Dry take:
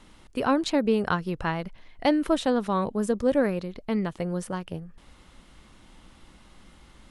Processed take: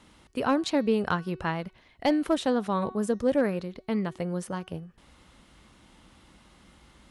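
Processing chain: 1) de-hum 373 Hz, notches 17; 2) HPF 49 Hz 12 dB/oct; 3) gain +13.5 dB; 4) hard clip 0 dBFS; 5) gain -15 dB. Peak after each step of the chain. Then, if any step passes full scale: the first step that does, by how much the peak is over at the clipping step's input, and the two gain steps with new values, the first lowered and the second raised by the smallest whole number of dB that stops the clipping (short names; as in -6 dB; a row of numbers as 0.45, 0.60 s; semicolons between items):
-9.5, -10.0, +3.5, 0.0, -15.0 dBFS; step 3, 3.5 dB; step 3 +9.5 dB, step 5 -11 dB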